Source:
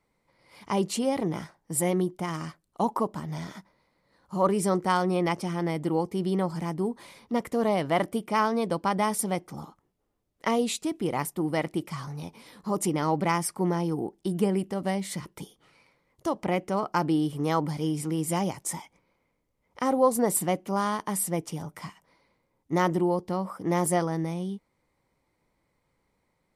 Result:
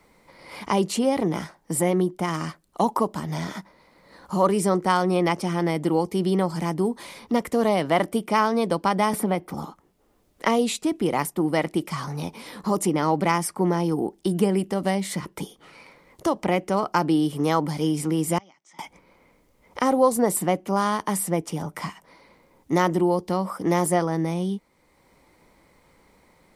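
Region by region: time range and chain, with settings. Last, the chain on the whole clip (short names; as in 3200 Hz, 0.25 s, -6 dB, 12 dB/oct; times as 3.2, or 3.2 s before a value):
9.13–9.54 bell 6600 Hz -12 dB 1.3 oct + three-band squash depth 70%
18.38–18.79 flipped gate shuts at -36 dBFS, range -27 dB + speaker cabinet 260–6500 Hz, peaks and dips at 460 Hz -9 dB, 1300 Hz +5 dB, 2100 Hz +9 dB, 3300 Hz +9 dB, 5900 Hz +8 dB
whole clip: bell 120 Hz -6.5 dB 0.53 oct; three-band squash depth 40%; gain +4.5 dB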